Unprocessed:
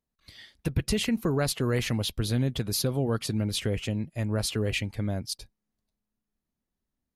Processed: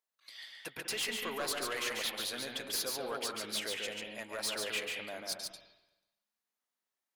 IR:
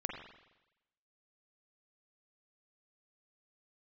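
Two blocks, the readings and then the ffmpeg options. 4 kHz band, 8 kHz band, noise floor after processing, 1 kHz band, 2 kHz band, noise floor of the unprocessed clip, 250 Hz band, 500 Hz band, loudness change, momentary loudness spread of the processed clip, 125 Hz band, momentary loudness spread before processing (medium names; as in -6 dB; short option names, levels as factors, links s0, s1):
-2.5 dB, -3.0 dB, under -85 dBFS, -2.0 dB, -1.0 dB, under -85 dBFS, -18.5 dB, -9.0 dB, -7.5 dB, 10 LU, -31.0 dB, 5 LU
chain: -filter_complex "[0:a]highpass=800,asoftclip=type=tanh:threshold=0.0282,asplit=2[s0][s1];[1:a]atrim=start_sample=2205,adelay=142[s2];[s1][s2]afir=irnorm=-1:irlink=0,volume=0.75[s3];[s0][s3]amix=inputs=2:normalize=0"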